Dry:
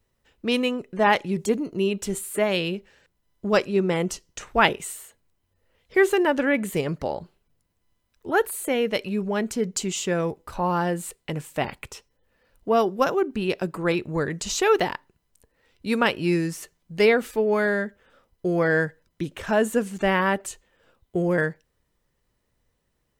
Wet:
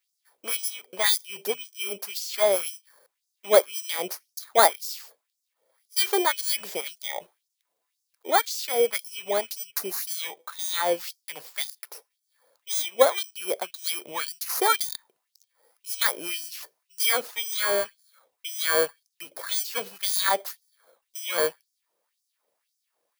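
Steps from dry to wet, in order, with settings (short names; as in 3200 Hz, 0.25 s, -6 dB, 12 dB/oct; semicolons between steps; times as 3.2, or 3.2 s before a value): FFT order left unsorted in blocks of 16 samples; LFO high-pass sine 1.9 Hz 520–5900 Hz; gain -1 dB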